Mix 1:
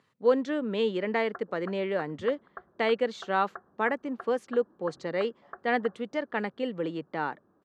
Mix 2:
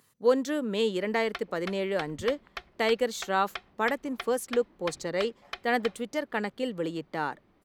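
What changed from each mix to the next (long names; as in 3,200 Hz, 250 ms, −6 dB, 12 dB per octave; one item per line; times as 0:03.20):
background: remove Chebyshev low-pass with heavy ripple 1,700 Hz, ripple 3 dB
master: remove band-pass filter 110–3,200 Hz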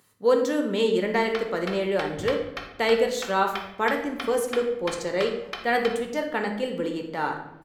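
reverb: on, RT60 0.80 s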